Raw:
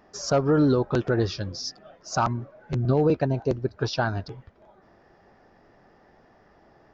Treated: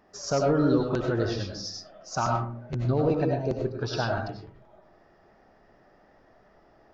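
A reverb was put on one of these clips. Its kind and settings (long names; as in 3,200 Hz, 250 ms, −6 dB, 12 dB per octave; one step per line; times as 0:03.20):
comb and all-pass reverb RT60 0.46 s, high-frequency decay 0.45×, pre-delay 55 ms, DRR 0.5 dB
level −4.5 dB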